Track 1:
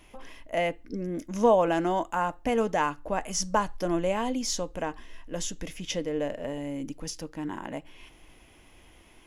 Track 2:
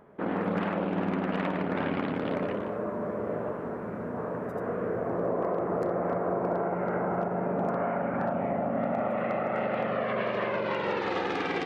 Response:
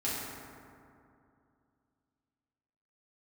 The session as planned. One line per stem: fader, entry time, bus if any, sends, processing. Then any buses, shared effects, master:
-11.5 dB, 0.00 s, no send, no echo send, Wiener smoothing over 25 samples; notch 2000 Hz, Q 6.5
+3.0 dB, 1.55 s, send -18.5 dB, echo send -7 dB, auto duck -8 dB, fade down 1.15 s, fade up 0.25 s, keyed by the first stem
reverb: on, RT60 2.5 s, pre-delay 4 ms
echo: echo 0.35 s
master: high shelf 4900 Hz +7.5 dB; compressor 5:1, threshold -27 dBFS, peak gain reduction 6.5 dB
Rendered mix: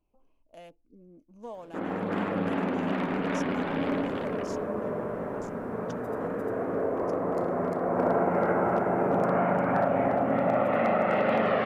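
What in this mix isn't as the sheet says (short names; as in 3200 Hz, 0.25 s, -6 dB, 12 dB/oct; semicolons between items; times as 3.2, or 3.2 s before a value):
stem 1 -11.5 dB -> -20.5 dB; master: missing compressor 5:1, threshold -27 dBFS, peak gain reduction 6.5 dB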